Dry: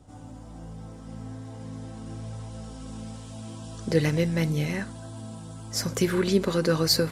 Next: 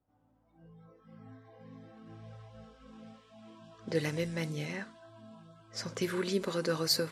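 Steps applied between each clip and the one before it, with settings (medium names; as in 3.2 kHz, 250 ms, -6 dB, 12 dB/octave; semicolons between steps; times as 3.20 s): spectral noise reduction 17 dB; level-controlled noise filter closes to 2.1 kHz, open at -19 dBFS; bass shelf 240 Hz -8 dB; trim -6 dB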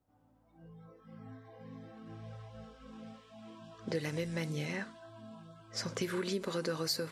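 compression 4:1, threshold -34 dBFS, peak gain reduction 9 dB; trim +2 dB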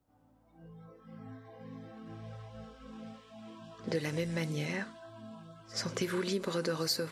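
pre-echo 77 ms -20 dB; trim +2 dB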